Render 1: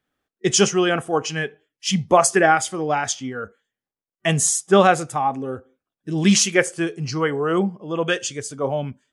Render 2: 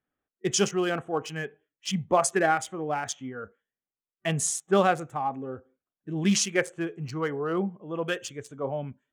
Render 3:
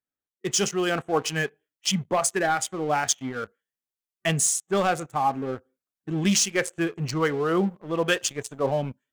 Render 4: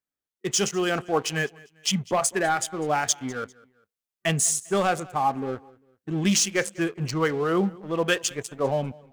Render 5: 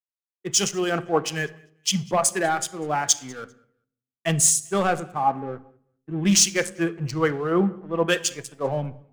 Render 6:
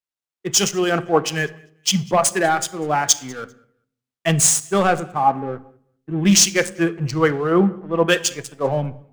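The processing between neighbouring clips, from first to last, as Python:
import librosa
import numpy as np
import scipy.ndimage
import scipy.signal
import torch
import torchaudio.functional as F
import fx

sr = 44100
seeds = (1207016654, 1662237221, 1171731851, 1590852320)

y1 = fx.wiener(x, sr, points=9)
y1 = F.gain(torch.from_numpy(y1), -7.5).numpy()
y2 = fx.high_shelf(y1, sr, hz=3000.0, db=7.5)
y2 = fx.leveller(y2, sr, passes=2)
y2 = fx.rider(y2, sr, range_db=4, speed_s=0.5)
y2 = F.gain(torch.from_numpy(y2), -5.5).numpy()
y3 = fx.echo_feedback(y2, sr, ms=199, feedback_pct=36, wet_db=-23.0)
y4 = fx.room_shoebox(y3, sr, seeds[0], volume_m3=3300.0, walls='furnished', distance_m=0.74)
y4 = fx.band_widen(y4, sr, depth_pct=70)
y5 = scipy.ndimage.median_filter(y4, 3, mode='constant')
y5 = F.gain(torch.from_numpy(y5), 5.0).numpy()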